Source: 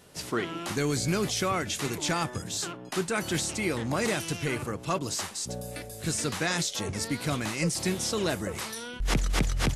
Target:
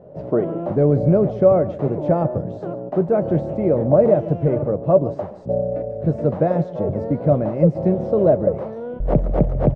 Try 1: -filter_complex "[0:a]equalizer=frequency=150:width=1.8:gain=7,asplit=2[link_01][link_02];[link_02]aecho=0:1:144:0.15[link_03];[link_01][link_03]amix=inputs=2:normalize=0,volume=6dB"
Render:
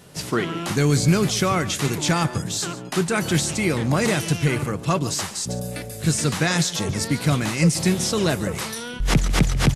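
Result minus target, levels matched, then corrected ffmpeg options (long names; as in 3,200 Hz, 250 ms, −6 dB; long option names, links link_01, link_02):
500 Hz band −7.0 dB
-filter_complex "[0:a]lowpass=frequency=590:width_type=q:width=6.2,equalizer=frequency=150:width=1.8:gain=7,asplit=2[link_01][link_02];[link_02]aecho=0:1:144:0.15[link_03];[link_01][link_03]amix=inputs=2:normalize=0,volume=6dB"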